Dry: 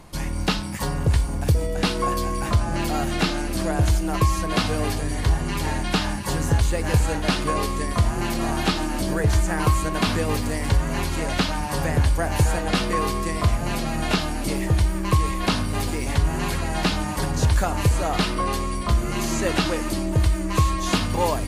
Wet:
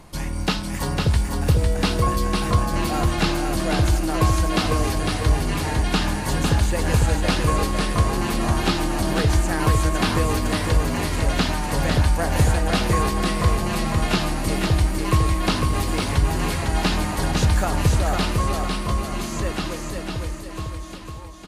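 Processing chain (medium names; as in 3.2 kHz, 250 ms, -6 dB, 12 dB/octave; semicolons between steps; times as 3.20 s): fade out at the end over 3.97 s; feedback delay 503 ms, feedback 39%, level -4 dB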